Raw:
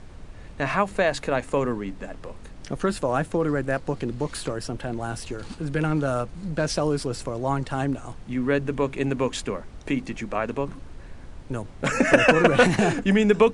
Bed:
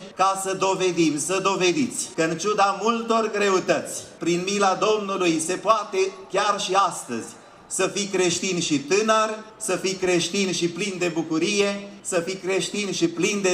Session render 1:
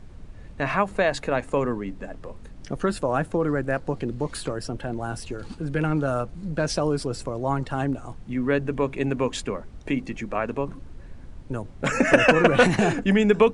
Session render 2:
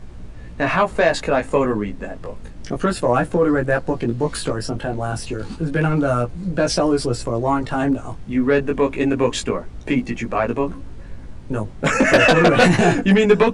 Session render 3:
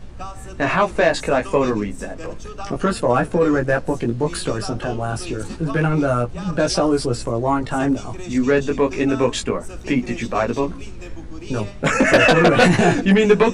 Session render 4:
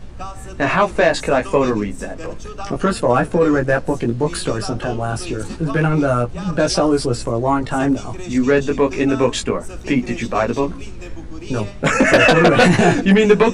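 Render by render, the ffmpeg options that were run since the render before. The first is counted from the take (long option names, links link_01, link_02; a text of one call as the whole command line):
ffmpeg -i in.wav -af "afftdn=noise_reduction=6:noise_floor=-43" out.wav
ffmpeg -i in.wav -af "aeval=exprs='0.75*sin(PI/2*2*val(0)/0.75)':channel_layout=same,flanger=delay=16.5:depth=2.5:speed=0.3" out.wav
ffmpeg -i in.wav -i bed.wav -filter_complex "[1:a]volume=-14.5dB[link_01];[0:a][link_01]amix=inputs=2:normalize=0" out.wav
ffmpeg -i in.wav -af "volume=2dB,alimiter=limit=-2dB:level=0:latency=1" out.wav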